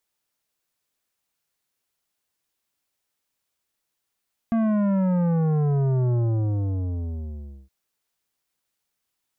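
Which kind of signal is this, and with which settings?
sub drop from 230 Hz, over 3.17 s, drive 11.5 dB, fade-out 1.56 s, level -20 dB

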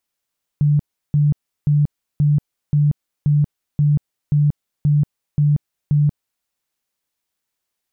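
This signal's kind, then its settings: tone bursts 147 Hz, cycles 27, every 0.53 s, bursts 11, -11.5 dBFS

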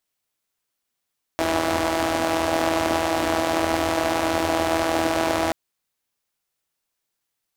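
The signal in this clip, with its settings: four-cylinder engine model, steady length 4.13 s, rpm 4900, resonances 90/310/620 Hz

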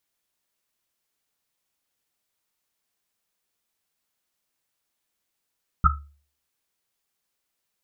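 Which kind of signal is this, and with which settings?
Risset drum, pitch 72 Hz, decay 0.45 s, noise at 1300 Hz, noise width 110 Hz, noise 50%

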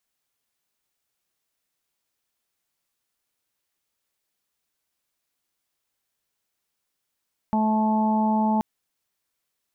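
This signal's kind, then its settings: steady additive tone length 1.08 s, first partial 217 Hz, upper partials -18.5/-10.5/-3/-19.5 dB, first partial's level -20.5 dB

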